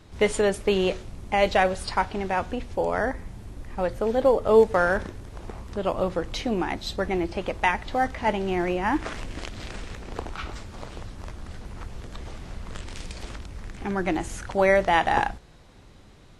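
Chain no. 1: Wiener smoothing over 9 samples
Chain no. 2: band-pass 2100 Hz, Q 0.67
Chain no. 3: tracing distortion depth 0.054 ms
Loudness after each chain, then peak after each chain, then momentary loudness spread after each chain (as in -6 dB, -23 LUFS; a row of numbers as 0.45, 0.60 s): -25.0, -30.5, -25.0 LUFS; -6.0, -9.5, -6.0 dBFS; 20, 22, 20 LU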